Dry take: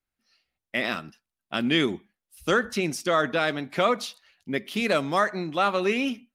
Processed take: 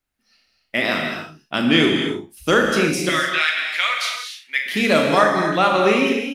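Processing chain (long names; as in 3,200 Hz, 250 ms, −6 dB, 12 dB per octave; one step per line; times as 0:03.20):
0:03.09–0:04.66: high-pass with resonance 2,100 Hz, resonance Q 2
ambience of single reflections 38 ms −7.5 dB, 67 ms −13 dB
reverb whose tail is shaped and stops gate 310 ms flat, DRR 2.5 dB
level +5.5 dB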